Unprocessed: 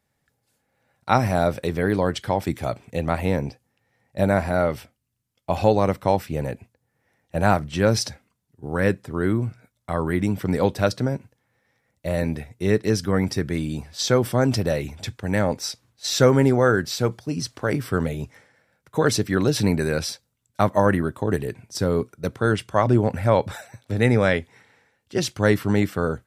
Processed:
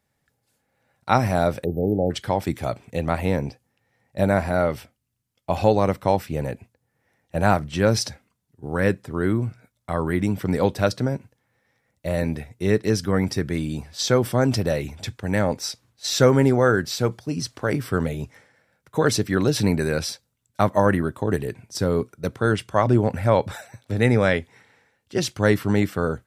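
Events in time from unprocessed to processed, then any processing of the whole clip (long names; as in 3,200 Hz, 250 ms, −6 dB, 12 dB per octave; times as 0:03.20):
0:01.64–0:02.11: time-frequency box erased 840–12,000 Hz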